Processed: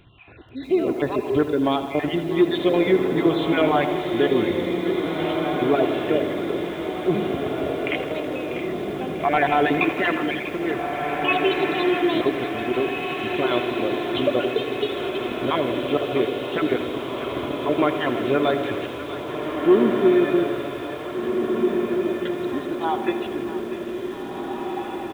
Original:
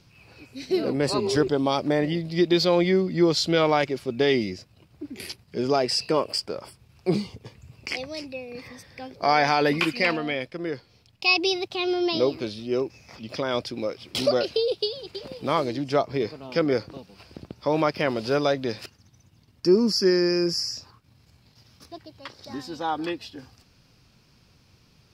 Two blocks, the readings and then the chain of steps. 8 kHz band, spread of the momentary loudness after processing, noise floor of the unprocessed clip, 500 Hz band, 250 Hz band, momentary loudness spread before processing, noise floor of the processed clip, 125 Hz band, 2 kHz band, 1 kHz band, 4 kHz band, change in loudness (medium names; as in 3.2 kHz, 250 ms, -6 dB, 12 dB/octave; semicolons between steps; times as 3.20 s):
under -10 dB, 9 LU, -60 dBFS, +3.5 dB, +4.5 dB, 18 LU, -32 dBFS, 0.0 dB, +3.0 dB, +3.5 dB, -3.0 dB, +1.5 dB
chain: random holes in the spectrogram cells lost 34%; comb 2.9 ms, depth 37%; in parallel at -1 dB: compression 6:1, threshold -33 dBFS, peak gain reduction 20 dB; on the sum: hard clipper -10.5 dBFS, distortion -25 dB; on a send: echo that smears into a reverb 1854 ms, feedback 56%, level -4 dB; on the sum: resampled via 8 kHz; two-band feedback delay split 880 Hz, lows 113 ms, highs 644 ms, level -11.5 dB; bit-crushed delay 81 ms, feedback 80%, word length 7-bit, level -13 dB